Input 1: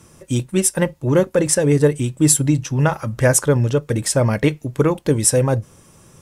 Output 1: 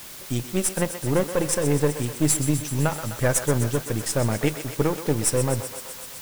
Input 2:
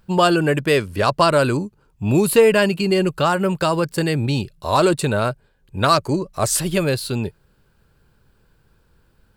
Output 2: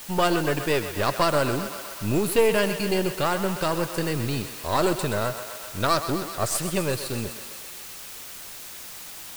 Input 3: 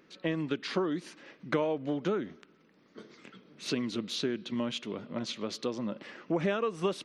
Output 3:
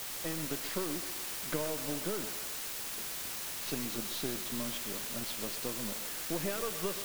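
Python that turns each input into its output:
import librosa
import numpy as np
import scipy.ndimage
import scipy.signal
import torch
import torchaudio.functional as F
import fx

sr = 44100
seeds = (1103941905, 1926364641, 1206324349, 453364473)

y = np.where(x < 0.0, 10.0 ** (-7.0 / 20.0) * x, x)
y = fx.quant_dither(y, sr, seeds[0], bits=6, dither='triangular')
y = fx.echo_thinned(y, sr, ms=127, feedback_pct=78, hz=380.0, wet_db=-10.5)
y = F.gain(torch.from_numpy(y), -4.5).numpy()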